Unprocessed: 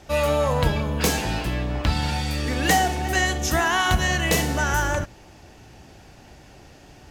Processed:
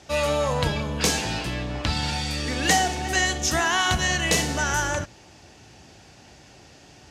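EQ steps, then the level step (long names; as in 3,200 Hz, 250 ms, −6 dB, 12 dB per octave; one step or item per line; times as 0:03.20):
high-pass filter 68 Hz
low-pass filter 6,900 Hz 12 dB per octave
high-shelf EQ 4,000 Hz +11 dB
−2.5 dB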